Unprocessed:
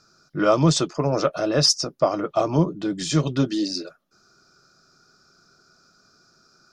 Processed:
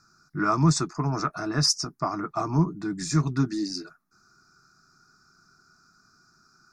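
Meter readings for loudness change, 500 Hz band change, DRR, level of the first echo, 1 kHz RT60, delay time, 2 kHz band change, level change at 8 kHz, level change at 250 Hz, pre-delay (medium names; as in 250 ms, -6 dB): -4.0 dB, -12.0 dB, no reverb, no echo, no reverb, no echo, -1.5 dB, -3.0 dB, -3.5 dB, no reverb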